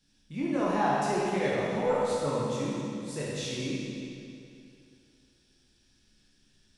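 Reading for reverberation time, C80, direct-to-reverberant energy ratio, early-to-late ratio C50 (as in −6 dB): 2.6 s, −1.5 dB, −7.0 dB, −3.5 dB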